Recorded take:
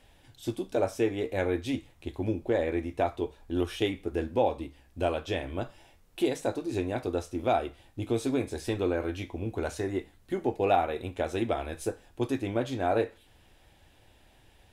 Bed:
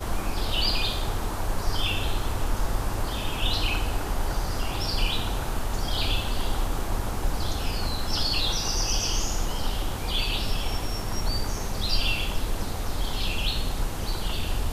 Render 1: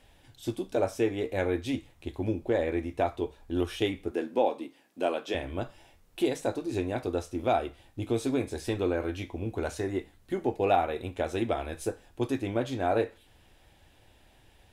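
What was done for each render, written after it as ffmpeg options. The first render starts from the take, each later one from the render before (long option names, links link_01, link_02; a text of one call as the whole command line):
ffmpeg -i in.wav -filter_complex "[0:a]asettb=1/sr,asplit=3[link_01][link_02][link_03];[link_01]atrim=end=4.114[link_04];[link_02]atrim=start=4.11:end=5.35,asetpts=PTS-STARTPTS,afade=type=in:duration=0.004:curve=qsin,afade=type=out:start_time=1.236:duration=0.004:curve=qsin,highpass=frequency=200:width=0.5412,highpass=frequency=200:width=1.3066[link_05];[link_03]atrim=start=5.346[link_06];[link_04][link_05]acrossfade=duration=0.004:curve1=hsin:curve2=qsin[link_07];[link_07][link_06]acrossfade=duration=0.004:curve1=qsin:curve2=hsin" out.wav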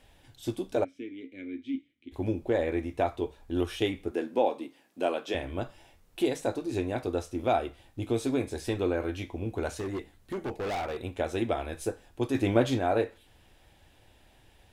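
ffmpeg -i in.wav -filter_complex "[0:a]asplit=3[link_01][link_02][link_03];[link_01]afade=type=out:start_time=0.83:duration=0.02[link_04];[link_02]asplit=3[link_05][link_06][link_07];[link_05]bandpass=frequency=270:width_type=q:width=8,volume=0dB[link_08];[link_06]bandpass=frequency=2290:width_type=q:width=8,volume=-6dB[link_09];[link_07]bandpass=frequency=3010:width_type=q:width=8,volume=-9dB[link_10];[link_08][link_09][link_10]amix=inputs=3:normalize=0,afade=type=in:start_time=0.83:duration=0.02,afade=type=out:start_time=2.11:duration=0.02[link_11];[link_03]afade=type=in:start_time=2.11:duration=0.02[link_12];[link_04][link_11][link_12]amix=inputs=3:normalize=0,asettb=1/sr,asplit=3[link_13][link_14][link_15];[link_13]atrim=end=9.714[link_16];[link_14]atrim=start=9.71:end=10.98,asetpts=PTS-STARTPTS,afade=type=in:duration=0.004:curve=qsin,afade=type=out:start_time=1.266:duration=0.004:curve=qsin,asoftclip=type=hard:threshold=-30dB[link_17];[link_15]atrim=start=10.976[link_18];[link_16][link_17]acrossfade=duration=0.004:curve1=hsin:curve2=qsin[link_19];[link_19][link_18]acrossfade=duration=0.004:curve1=qsin:curve2=hsin,asplit=3[link_20][link_21][link_22];[link_20]afade=type=out:start_time=12.34:duration=0.02[link_23];[link_21]acontrast=54,afade=type=in:start_time=12.34:duration=0.02,afade=type=out:start_time=12.78:duration=0.02[link_24];[link_22]afade=type=in:start_time=12.78:duration=0.02[link_25];[link_23][link_24][link_25]amix=inputs=3:normalize=0" out.wav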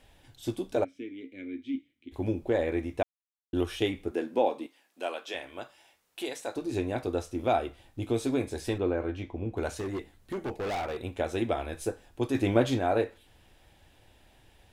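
ffmpeg -i in.wav -filter_complex "[0:a]asettb=1/sr,asplit=3[link_01][link_02][link_03];[link_01]atrim=end=4.664[link_04];[link_02]atrim=start=4.66:end=6.56,asetpts=PTS-STARTPTS,afade=type=in:duration=0.004:curve=qsin,afade=type=out:start_time=1.896:duration=0.004:curve=qsin,highpass=frequency=1000:poles=1[link_05];[link_03]atrim=start=6.556[link_06];[link_04][link_05]acrossfade=duration=0.004:curve1=hsin:curve2=qsin[link_07];[link_07][link_06]acrossfade=duration=0.004:curve1=qsin:curve2=hsin,asettb=1/sr,asplit=3[link_08][link_09][link_10];[link_08]atrim=end=8.784[link_11];[link_09]atrim=start=8.78:end=9.57,asetpts=PTS-STARTPTS,afade=type=in:duration=0.004:curve=qsin,afade=type=out:start_time=0.786:duration=0.004:curve=qsin,lowpass=frequency=1800:poles=1[link_12];[link_10]atrim=start=9.566[link_13];[link_11][link_12]acrossfade=duration=0.004:curve1=hsin:curve2=qsin[link_14];[link_14][link_13]acrossfade=duration=0.004:curve1=qsin:curve2=hsin,asplit=3[link_15][link_16][link_17];[link_15]atrim=end=3.03,asetpts=PTS-STARTPTS,afade=type=out:start_time=3.026:duration=0.004:curve=hsin[link_18];[link_16]atrim=start=3.03:end=3.53,asetpts=PTS-STARTPTS,volume=0[link_19];[link_17]atrim=start=3.53,asetpts=PTS-STARTPTS,afade=type=in:duration=0.004:curve=hsin[link_20];[link_18][link_19][link_20]concat=n=3:v=0:a=1" out.wav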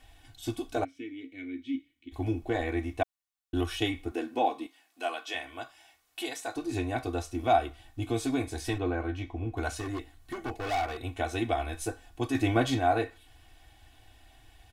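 ffmpeg -i in.wav -af "equalizer=frequency=400:width=3.4:gain=-13,aecho=1:1:2.7:0.91" out.wav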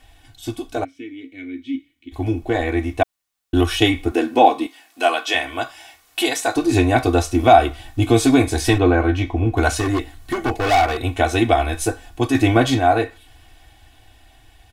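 ffmpeg -i in.wav -af "dynaudnorm=framelen=990:gausssize=7:maxgain=11.5dB,alimiter=level_in=6dB:limit=-1dB:release=50:level=0:latency=1" out.wav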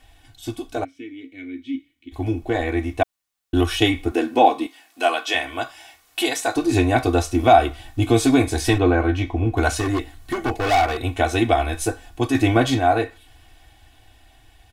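ffmpeg -i in.wav -af "volume=-2dB" out.wav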